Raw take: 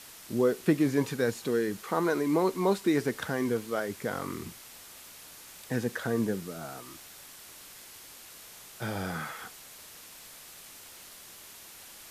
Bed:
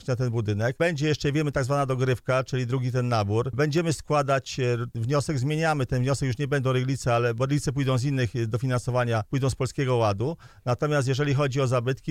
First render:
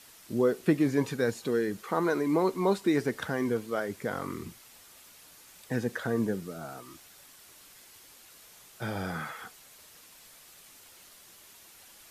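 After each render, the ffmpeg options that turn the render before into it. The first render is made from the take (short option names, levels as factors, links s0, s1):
-af "afftdn=nr=6:nf=-49"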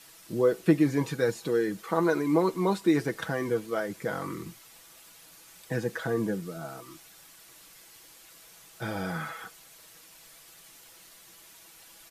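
-af "aecho=1:1:6.1:0.51"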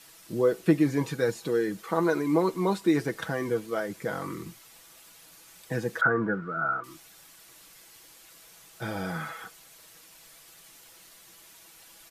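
-filter_complex "[0:a]asettb=1/sr,asplit=3[s0][s1][s2];[s0]atrim=end=6.014[s3];[s1]atrim=start=6.01:end=6.84,asetpts=PTS-STARTPTS,afade=t=in:d=0.004:c=qsin,afade=t=out:st=0.826:d=0.004:c=qsin,lowpass=f=1400:t=q:w=14[s4];[s2]atrim=start=6.836[s5];[s3][s4]acrossfade=d=0.004:c1=hsin:c2=qsin[s6];[s6][s5]acrossfade=d=0.004:c1=qsin:c2=hsin"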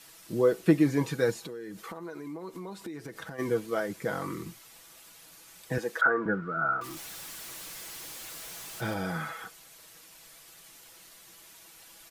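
-filter_complex "[0:a]asplit=3[s0][s1][s2];[s0]afade=t=out:st=1.43:d=0.02[s3];[s1]acompressor=threshold=0.0141:ratio=8:attack=3.2:release=140:knee=1:detection=peak,afade=t=in:st=1.43:d=0.02,afade=t=out:st=3.38:d=0.02[s4];[s2]afade=t=in:st=3.38:d=0.02[s5];[s3][s4][s5]amix=inputs=3:normalize=0,asettb=1/sr,asplit=3[s6][s7][s8];[s6]atrim=end=5.784[s9];[s7]atrim=start=5.78:end=6.26,asetpts=PTS-STARTPTS,afade=t=in:d=0.004:c=qsin,afade=t=out:st=0.476:d=0.004:c=qsin,highpass=350[s10];[s8]atrim=start=6.256[s11];[s9][s10]acrossfade=d=0.004:c1=hsin:c2=qsin[s12];[s12][s11]acrossfade=d=0.004:c1=qsin:c2=hsin,asettb=1/sr,asplit=3[s13][s14][s15];[s13]atrim=end=6.814[s16];[s14]atrim=start=6.81:end=8.94,asetpts=PTS-STARTPTS,afade=t=in:d=0.004:c=qsin,afade=t=out:st=2.126:d=0.004:c=qsin,aeval=exprs='val(0)+0.5*0.0106*sgn(val(0))':c=same[s17];[s15]atrim=start=8.936[s18];[s16][s17]acrossfade=d=0.004:c1=hsin:c2=qsin[s19];[s19][s18]acrossfade=d=0.004:c1=qsin:c2=hsin"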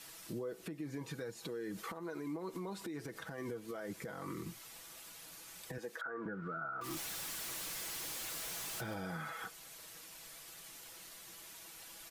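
-af "acompressor=threshold=0.0282:ratio=6,alimiter=level_in=2.99:limit=0.0631:level=0:latency=1:release=220,volume=0.335"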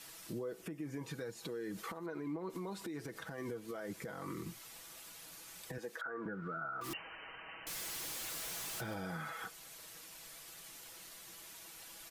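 -filter_complex "[0:a]asettb=1/sr,asplit=3[s0][s1][s2];[s0]atrim=end=0.614[s3];[s1]atrim=start=0.61:end=1.03,asetpts=PTS-STARTPTS,afade=t=in:d=0.004:c=qsin,afade=t=out:st=0.416:d=0.004:c=qsin,equalizer=f=4100:w=6.7:g=-14.5[s4];[s2]atrim=start=1.026[s5];[s3][s4]acrossfade=d=0.004:c1=hsin:c2=qsin[s6];[s6][s5]acrossfade=d=0.004:c1=qsin:c2=hsin,asettb=1/sr,asplit=3[s7][s8][s9];[s7]atrim=end=2.064[s10];[s8]atrim=start=2.06:end=2.5,asetpts=PTS-STARTPTS,afade=t=in:d=0.004:c=qsin,afade=t=out:st=0.436:d=0.004:c=qsin,bass=f=250:g=2,treble=f=4000:g=-11[s11];[s9]atrim=start=2.496[s12];[s10][s11]acrossfade=d=0.004:c1=hsin:c2=qsin[s13];[s13][s12]acrossfade=d=0.004:c1=qsin:c2=hsin,asettb=1/sr,asplit=3[s14][s15][s16];[s14]atrim=end=6.934[s17];[s15]atrim=start=6.93:end=7.67,asetpts=PTS-STARTPTS,afade=t=in:d=0.004:c=qsin,afade=t=out:st=0.736:d=0.004:c=qsin,lowpass=f=2600:t=q:w=0.5098,lowpass=f=2600:t=q:w=0.6013,lowpass=f=2600:t=q:w=0.9,lowpass=f=2600:t=q:w=2.563,afreqshift=-3100[s18];[s16]atrim=start=7.666[s19];[s17][s18]acrossfade=d=0.004:c1=hsin:c2=qsin[s20];[s20][s19]acrossfade=d=0.004:c1=qsin:c2=hsin"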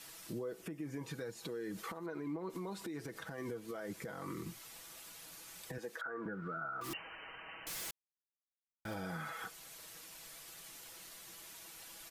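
-filter_complex "[0:a]asplit=3[s0][s1][s2];[s0]atrim=end=7.91,asetpts=PTS-STARTPTS,afade=t=out:st=7.906:d=0.004:c=hsin[s3];[s1]atrim=start=7.91:end=8.85,asetpts=PTS-STARTPTS,volume=0[s4];[s2]atrim=start=8.85,asetpts=PTS-STARTPTS,afade=t=in:d=0.004:c=hsin[s5];[s3][s4][s5]concat=n=3:v=0:a=1"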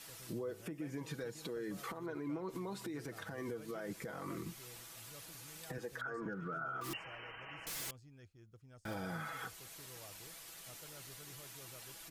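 -filter_complex "[1:a]volume=0.02[s0];[0:a][s0]amix=inputs=2:normalize=0"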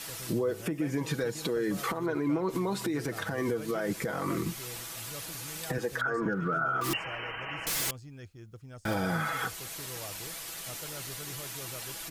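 -af "volume=3.98"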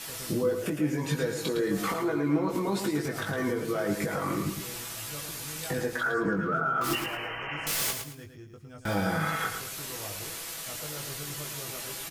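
-filter_complex "[0:a]asplit=2[s0][s1];[s1]adelay=20,volume=0.631[s2];[s0][s2]amix=inputs=2:normalize=0,asplit=2[s3][s4];[s4]aecho=0:1:110|220|330|440:0.447|0.134|0.0402|0.0121[s5];[s3][s5]amix=inputs=2:normalize=0"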